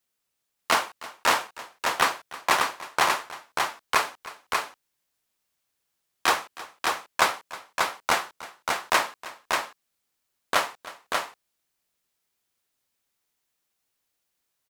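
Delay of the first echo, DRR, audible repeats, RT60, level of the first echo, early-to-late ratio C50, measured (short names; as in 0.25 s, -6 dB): 0.315 s, none, 2, none, -18.0 dB, none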